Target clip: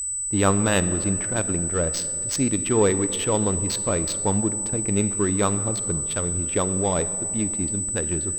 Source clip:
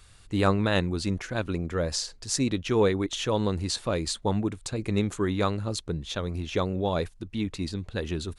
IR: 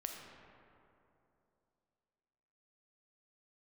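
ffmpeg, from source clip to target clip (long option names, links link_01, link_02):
-filter_complex "[0:a]adynamicsmooth=sensitivity=4.5:basefreq=1000,aeval=exprs='val(0)+0.0355*sin(2*PI*8000*n/s)':channel_layout=same,asplit=2[link_01][link_02];[1:a]atrim=start_sample=2205[link_03];[link_02][link_03]afir=irnorm=-1:irlink=0,volume=-4dB[link_04];[link_01][link_04]amix=inputs=2:normalize=0"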